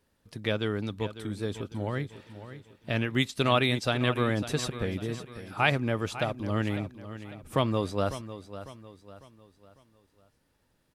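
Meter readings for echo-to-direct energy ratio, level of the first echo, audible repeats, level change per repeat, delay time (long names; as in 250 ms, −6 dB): −12.0 dB, −13.0 dB, 3, −8.0 dB, 550 ms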